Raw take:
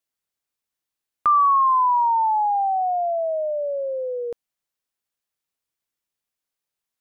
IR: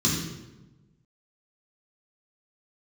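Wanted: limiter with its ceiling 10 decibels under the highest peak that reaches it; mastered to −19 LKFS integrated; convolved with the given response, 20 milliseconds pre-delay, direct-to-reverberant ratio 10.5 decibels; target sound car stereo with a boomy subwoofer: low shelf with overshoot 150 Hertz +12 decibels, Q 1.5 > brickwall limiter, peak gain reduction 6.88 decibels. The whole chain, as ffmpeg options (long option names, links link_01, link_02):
-filter_complex "[0:a]alimiter=limit=-22.5dB:level=0:latency=1,asplit=2[link_01][link_02];[1:a]atrim=start_sample=2205,adelay=20[link_03];[link_02][link_03]afir=irnorm=-1:irlink=0,volume=-22dB[link_04];[link_01][link_04]amix=inputs=2:normalize=0,lowshelf=frequency=150:width_type=q:width=1.5:gain=12,volume=11dB,alimiter=limit=-14.5dB:level=0:latency=1"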